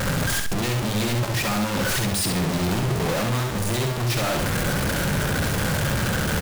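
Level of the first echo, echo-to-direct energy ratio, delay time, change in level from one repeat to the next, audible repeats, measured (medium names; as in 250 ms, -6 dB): -4.5 dB, -4.0 dB, 67 ms, -10.5 dB, 2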